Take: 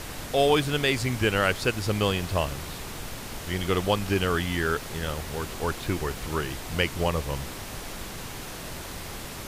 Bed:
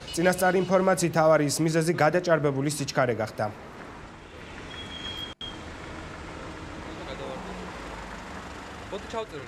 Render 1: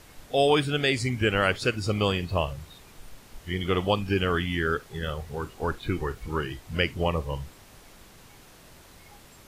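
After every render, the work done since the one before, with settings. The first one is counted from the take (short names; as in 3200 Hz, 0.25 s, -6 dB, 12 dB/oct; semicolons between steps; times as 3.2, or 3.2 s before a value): noise print and reduce 14 dB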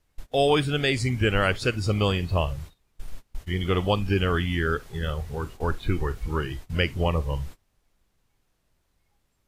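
gate -43 dBFS, range -24 dB; low shelf 76 Hz +12 dB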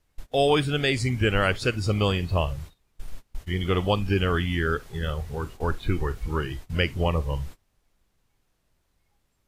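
nothing audible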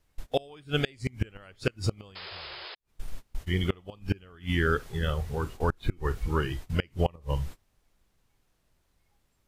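2.15–2.75 painted sound noise 330–5200 Hz -14 dBFS; flipped gate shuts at -13 dBFS, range -28 dB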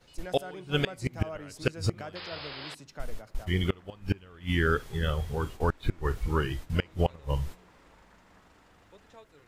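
add bed -20 dB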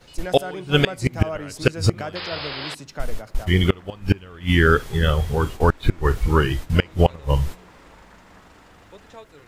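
gain +10 dB; limiter -2 dBFS, peak gain reduction 1.5 dB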